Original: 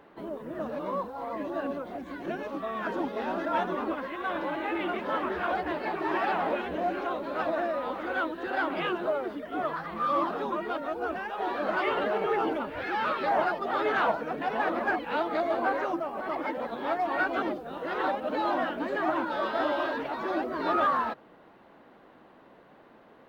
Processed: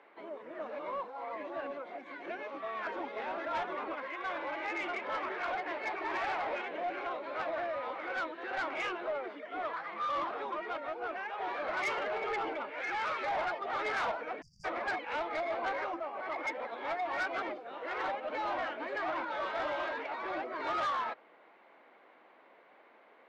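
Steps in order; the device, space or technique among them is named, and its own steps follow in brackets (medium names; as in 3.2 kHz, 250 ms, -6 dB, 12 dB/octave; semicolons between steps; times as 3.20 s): intercom (band-pass 470–4300 Hz; peaking EQ 2.2 kHz +11 dB 0.23 oct; saturation -25 dBFS, distortion -15 dB); spectral selection erased 14.41–14.65 s, 210–4600 Hz; trim -3.5 dB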